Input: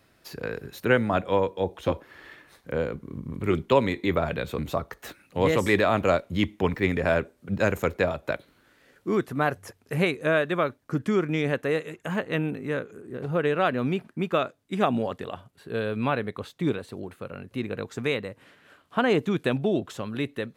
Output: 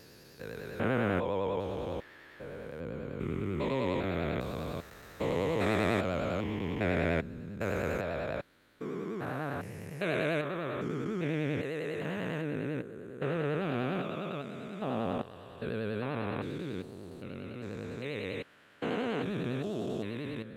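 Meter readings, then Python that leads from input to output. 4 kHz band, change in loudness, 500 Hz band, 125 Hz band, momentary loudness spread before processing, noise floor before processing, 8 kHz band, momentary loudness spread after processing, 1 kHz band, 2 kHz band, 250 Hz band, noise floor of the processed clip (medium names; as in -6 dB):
-8.0 dB, -7.5 dB, -8.0 dB, -5.5 dB, 13 LU, -63 dBFS, -8.5 dB, 12 LU, -9.0 dB, -8.5 dB, -6.5 dB, -55 dBFS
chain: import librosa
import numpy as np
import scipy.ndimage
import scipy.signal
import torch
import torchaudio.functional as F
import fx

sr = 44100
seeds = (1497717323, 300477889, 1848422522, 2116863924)

y = fx.spec_steps(x, sr, hold_ms=400)
y = fx.vibrato(y, sr, rate_hz=10.0, depth_cents=81.0)
y = y * 10.0 ** (-3.0 / 20.0)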